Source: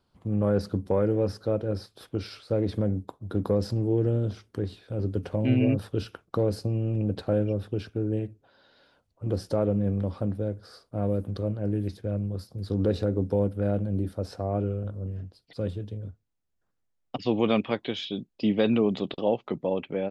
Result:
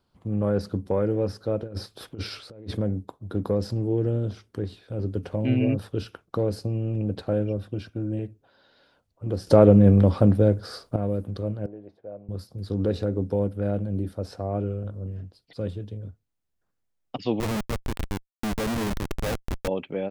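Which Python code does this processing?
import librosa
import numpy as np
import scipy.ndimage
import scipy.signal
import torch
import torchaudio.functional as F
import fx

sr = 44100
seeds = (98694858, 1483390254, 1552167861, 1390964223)

y = fx.over_compress(x, sr, threshold_db=-33.0, ratio=-0.5, at=(1.62, 2.77))
y = fx.notch_comb(y, sr, f0_hz=430.0, at=(7.57, 8.19))
y = fx.bandpass_q(y, sr, hz=680.0, q=2.3, at=(11.66, 12.29))
y = fx.schmitt(y, sr, flips_db=-26.5, at=(17.4, 19.68))
y = fx.edit(y, sr, fx.clip_gain(start_s=9.47, length_s=1.49, db=11.0), tone=tone)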